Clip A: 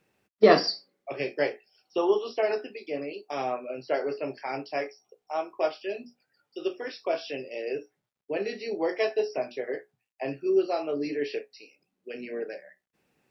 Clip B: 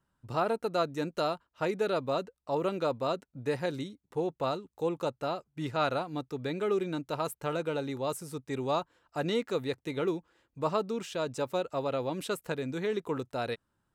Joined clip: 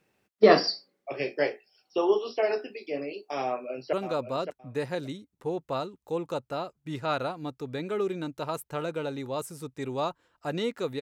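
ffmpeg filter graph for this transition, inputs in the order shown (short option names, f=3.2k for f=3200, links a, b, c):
-filter_complex "[0:a]apad=whole_dur=11.01,atrim=end=11.01,atrim=end=3.932[a];[1:a]atrim=start=2.638:end=9.72[b];[a][b]acrossfade=d=0.004:c1=hsin:c2=hsin,asplit=2[c][d];[d]afade=t=in:st=3.45:d=0.01,afade=t=out:st=3.93:d=0.01,aecho=0:1:570|1140:0.375837|0.0563756[e];[c][e]amix=inputs=2:normalize=0"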